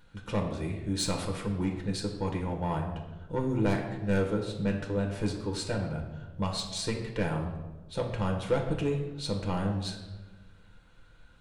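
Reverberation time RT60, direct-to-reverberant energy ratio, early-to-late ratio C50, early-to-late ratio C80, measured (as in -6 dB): 1.2 s, 1.0 dB, 6.5 dB, 9.0 dB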